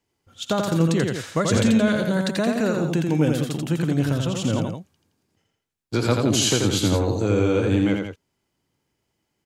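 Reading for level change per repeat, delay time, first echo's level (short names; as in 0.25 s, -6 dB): -5.0 dB, 85 ms, -4.0 dB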